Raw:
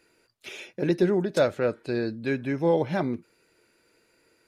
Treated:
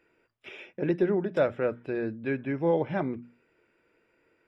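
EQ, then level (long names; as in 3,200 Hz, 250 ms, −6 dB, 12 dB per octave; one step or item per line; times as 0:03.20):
Savitzky-Golay smoothing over 25 samples
mains-hum notches 60/120/180/240 Hz
−2.5 dB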